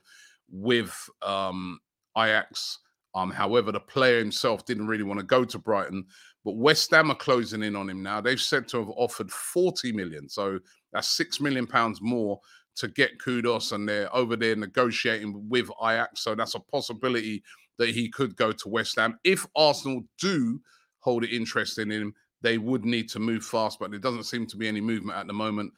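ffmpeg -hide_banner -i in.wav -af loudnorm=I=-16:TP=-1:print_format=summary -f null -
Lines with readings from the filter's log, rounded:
Input Integrated:    -27.0 LUFS
Input True Peak:      -3.0 dBTP
Input LRA:             4.2 LU
Input Threshold:     -37.3 LUFS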